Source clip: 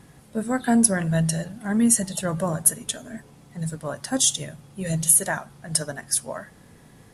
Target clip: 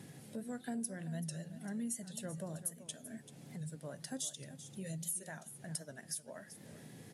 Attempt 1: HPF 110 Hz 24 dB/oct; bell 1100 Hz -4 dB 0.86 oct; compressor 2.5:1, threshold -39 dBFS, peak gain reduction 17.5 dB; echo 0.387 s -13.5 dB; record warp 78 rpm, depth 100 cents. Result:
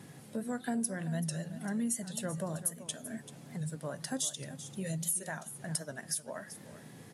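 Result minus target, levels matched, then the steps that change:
compressor: peak gain reduction -6.5 dB; 1000 Hz band +2.5 dB
change: bell 1100 Hz -10.5 dB 0.86 oct; change: compressor 2.5:1, threshold -49.5 dBFS, peak gain reduction 24 dB

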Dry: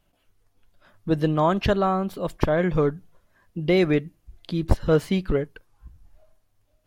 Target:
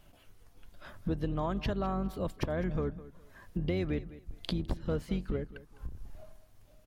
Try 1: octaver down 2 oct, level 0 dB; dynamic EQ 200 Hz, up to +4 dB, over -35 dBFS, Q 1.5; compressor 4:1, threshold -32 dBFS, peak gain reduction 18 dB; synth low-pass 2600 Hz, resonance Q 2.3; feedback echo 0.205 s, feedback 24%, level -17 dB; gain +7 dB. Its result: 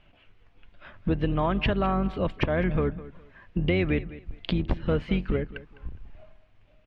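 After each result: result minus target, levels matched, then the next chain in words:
compressor: peak gain reduction -7 dB; 2000 Hz band +4.5 dB
octaver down 2 oct, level 0 dB; dynamic EQ 200 Hz, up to +4 dB, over -35 dBFS, Q 1.5; compressor 4:1, threshold -41.5 dBFS, peak gain reduction 25 dB; synth low-pass 2600 Hz, resonance Q 2.3; feedback echo 0.205 s, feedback 24%, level -17 dB; gain +7 dB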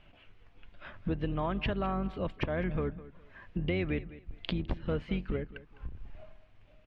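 2000 Hz band +4.5 dB
octaver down 2 oct, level 0 dB; dynamic EQ 200 Hz, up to +4 dB, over -35 dBFS, Q 1.5; compressor 4:1, threshold -41.5 dBFS, peak gain reduction 25 dB; feedback echo 0.205 s, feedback 24%, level -17 dB; gain +7 dB

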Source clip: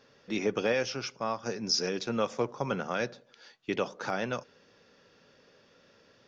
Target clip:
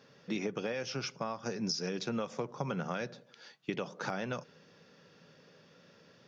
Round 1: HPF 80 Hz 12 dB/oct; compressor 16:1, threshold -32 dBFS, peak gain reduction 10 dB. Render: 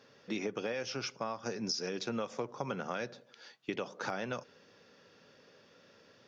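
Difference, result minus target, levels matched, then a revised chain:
125 Hz band -4.5 dB
HPF 80 Hz 12 dB/oct; compressor 16:1, threshold -32 dBFS, peak gain reduction 10 dB; bell 160 Hz +10.5 dB 0.49 oct

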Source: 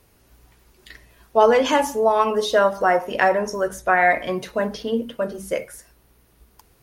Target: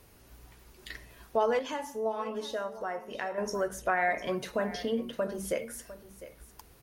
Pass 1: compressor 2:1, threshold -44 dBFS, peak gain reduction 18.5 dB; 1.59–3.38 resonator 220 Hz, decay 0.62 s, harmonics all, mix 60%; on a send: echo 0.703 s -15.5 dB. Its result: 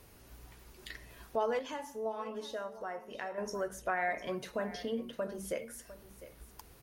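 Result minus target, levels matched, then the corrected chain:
compressor: peak gain reduction +5 dB
compressor 2:1, threshold -33.5 dBFS, peak gain reduction 13.5 dB; 1.59–3.38 resonator 220 Hz, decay 0.62 s, harmonics all, mix 60%; on a send: echo 0.703 s -15.5 dB

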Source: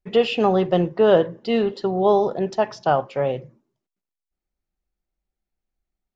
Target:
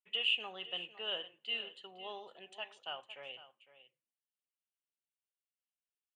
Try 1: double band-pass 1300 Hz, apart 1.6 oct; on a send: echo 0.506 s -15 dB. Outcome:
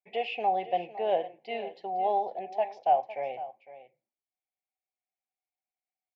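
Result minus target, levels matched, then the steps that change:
4000 Hz band -18.5 dB
change: double band-pass 5100 Hz, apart 1.6 oct

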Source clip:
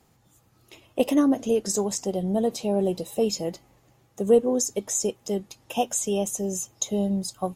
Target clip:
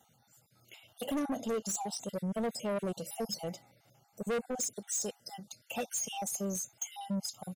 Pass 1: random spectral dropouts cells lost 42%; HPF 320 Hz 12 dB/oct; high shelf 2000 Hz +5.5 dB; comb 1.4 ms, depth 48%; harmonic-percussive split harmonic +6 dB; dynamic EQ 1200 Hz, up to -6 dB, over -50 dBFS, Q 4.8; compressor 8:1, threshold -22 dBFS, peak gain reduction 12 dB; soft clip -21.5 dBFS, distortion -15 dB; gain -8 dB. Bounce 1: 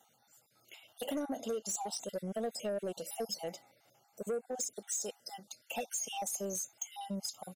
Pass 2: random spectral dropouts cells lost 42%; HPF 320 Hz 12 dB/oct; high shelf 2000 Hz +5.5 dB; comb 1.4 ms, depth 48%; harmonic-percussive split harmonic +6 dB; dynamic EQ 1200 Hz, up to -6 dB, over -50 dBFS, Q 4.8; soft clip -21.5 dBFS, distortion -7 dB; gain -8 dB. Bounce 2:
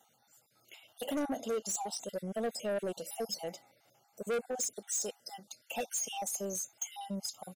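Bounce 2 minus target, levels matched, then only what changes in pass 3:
125 Hz band -6.0 dB
change: HPF 150 Hz 12 dB/oct

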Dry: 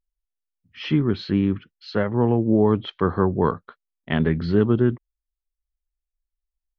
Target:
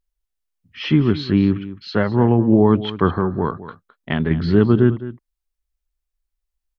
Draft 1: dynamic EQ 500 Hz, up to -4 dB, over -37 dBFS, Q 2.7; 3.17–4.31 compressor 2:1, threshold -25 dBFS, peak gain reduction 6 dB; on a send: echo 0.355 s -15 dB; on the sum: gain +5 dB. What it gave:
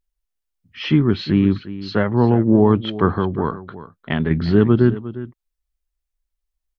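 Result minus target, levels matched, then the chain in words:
echo 0.144 s late
dynamic EQ 500 Hz, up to -4 dB, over -37 dBFS, Q 2.7; 3.17–4.31 compressor 2:1, threshold -25 dBFS, peak gain reduction 6 dB; on a send: echo 0.211 s -15 dB; on the sum: gain +5 dB

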